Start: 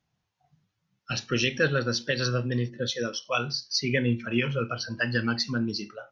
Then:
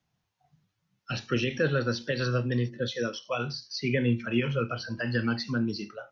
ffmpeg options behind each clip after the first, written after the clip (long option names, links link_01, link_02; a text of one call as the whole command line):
ffmpeg -i in.wav -filter_complex "[0:a]acrossover=split=3700[link_01][link_02];[link_02]acompressor=threshold=-43dB:ratio=4:attack=1:release=60[link_03];[link_01][link_03]amix=inputs=2:normalize=0,acrossover=split=100|680[link_04][link_05][link_06];[link_06]alimiter=limit=-23.5dB:level=0:latency=1:release=44[link_07];[link_04][link_05][link_07]amix=inputs=3:normalize=0" out.wav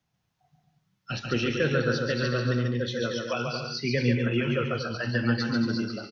ffmpeg -i in.wav -af "aecho=1:1:140|231|290.2|328.6|353.6:0.631|0.398|0.251|0.158|0.1" out.wav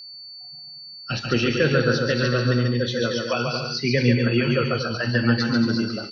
ffmpeg -i in.wav -af "aeval=exprs='val(0)+0.00708*sin(2*PI*4500*n/s)':channel_layout=same,volume=5.5dB" out.wav